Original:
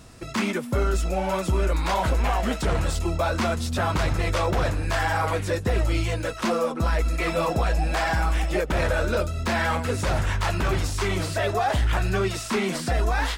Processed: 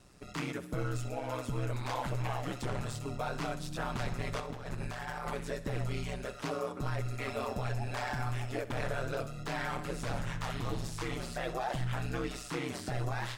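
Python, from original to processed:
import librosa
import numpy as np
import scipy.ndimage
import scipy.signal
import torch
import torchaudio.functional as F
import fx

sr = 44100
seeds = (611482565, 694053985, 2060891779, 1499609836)

y = fx.over_compress(x, sr, threshold_db=-26.0, ratio=-0.5, at=(4.4, 5.3))
y = fx.spec_repair(y, sr, seeds[0], start_s=10.48, length_s=0.37, low_hz=1200.0, high_hz=4300.0, source='both')
y = y * np.sin(2.0 * np.pi * 65.0 * np.arange(len(y)) / sr)
y = fx.echo_feedback(y, sr, ms=65, feedback_pct=52, wet_db=-15.5)
y = F.gain(torch.from_numpy(y), -9.0).numpy()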